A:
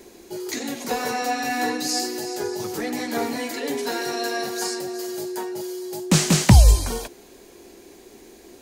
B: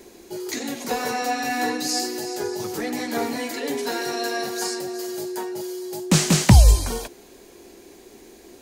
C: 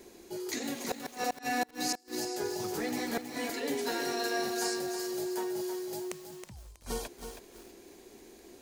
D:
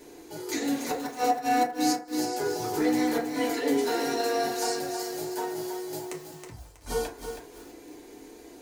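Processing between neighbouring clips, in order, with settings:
no audible change
inverted gate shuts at -14 dBFS, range -32 dB; bit-crushed delay 321 ms, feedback 35%, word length 7-bit, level -7 dB; trim -6.5 dB
in parallel at -5 dB: hard clipper -29 dBFS, distortion -15 dB; on the sum: FDN reverb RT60 0.42 s, low-frequency decay 0.7×, high-frequency decay 0.4×, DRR -3 dB; trim -3 dB

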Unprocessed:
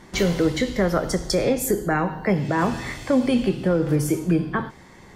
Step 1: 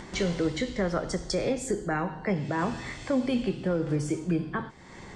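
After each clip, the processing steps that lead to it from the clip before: Chebyshev low-pass 8.4 kHz, order 4; upward compressor, threshold -28 dBFS; trim -6 dB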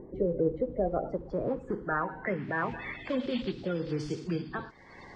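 coarse spectral quantiser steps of 30 dB; low-pass sweep 400 Hz -> 4.8 kHz, 0.02–3.89 s; trim -4.5 dB

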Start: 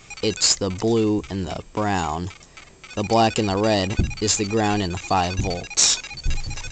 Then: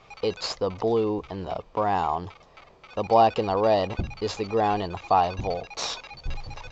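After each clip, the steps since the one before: low-pass 4.7 kHz 24 dB/octave; high-order bell 740 Hz +9.5 dB; trim -8.5 dB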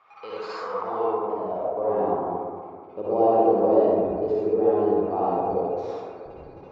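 band-pass sweep 1.2 kHz -> 370 Hz, 0.71–1.96 s; reverberation RT60 2.0 s, pre-delay 48 ms, DRR -8.5 dB

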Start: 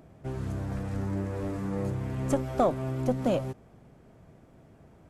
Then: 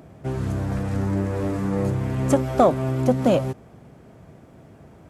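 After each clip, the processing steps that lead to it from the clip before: high-pass 57 Hz; trim +8 dB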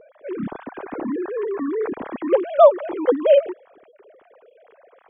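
formants replaced by sine waves; trim +2 dB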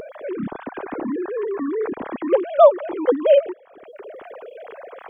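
upward compressor, threshold -25 dBFS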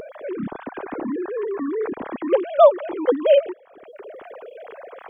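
dynamic bell 3.1 kHz, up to +4 dB, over -39 dBFS, Q 1.2; trim -1 dB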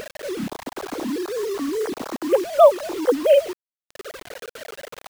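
bit crusher 6-bit

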